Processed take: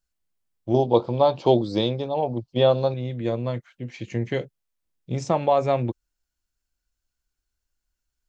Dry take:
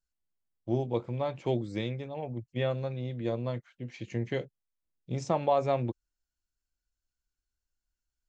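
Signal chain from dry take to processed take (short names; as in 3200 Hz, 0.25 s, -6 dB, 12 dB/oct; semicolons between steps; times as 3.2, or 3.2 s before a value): 0.74–2.94 EQ curve 120 Hz 0 dB, 930 Hz +10 dB, 2100 Hz -8 dB, 3100 Hz +6 dB, 4600 Hz +13 dB, 7200 Hz -3 dB; gain +6 dB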